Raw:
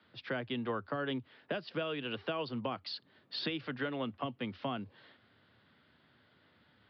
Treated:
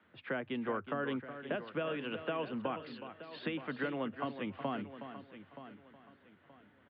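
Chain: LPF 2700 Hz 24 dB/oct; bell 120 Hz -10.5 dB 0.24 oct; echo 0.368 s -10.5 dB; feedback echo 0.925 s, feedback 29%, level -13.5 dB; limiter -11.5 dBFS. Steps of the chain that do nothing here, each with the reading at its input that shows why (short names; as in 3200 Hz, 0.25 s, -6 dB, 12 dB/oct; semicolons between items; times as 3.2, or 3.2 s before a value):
limiter -11.5 dBFS: input peak -23.0 dBFS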